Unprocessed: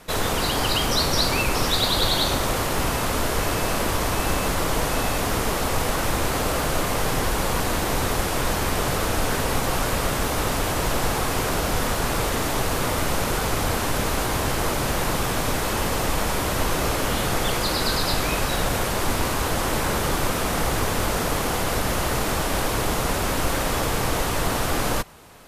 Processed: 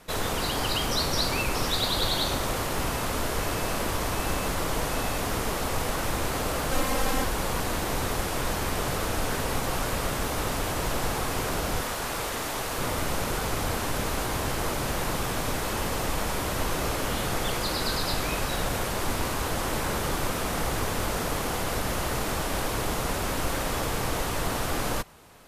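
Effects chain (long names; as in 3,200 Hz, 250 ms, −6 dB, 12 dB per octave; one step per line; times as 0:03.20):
0:06.71–0:07.24: comb filter 3.8 ms, depth 80%
0:11.81–0:12.78: low-shelf EQ 330 Hz −8 dB
level −5 dB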